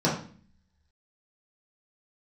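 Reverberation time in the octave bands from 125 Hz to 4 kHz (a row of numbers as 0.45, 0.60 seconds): 0.75, 0.80, 0.45, 0.40, 0.45, 0.45 seconds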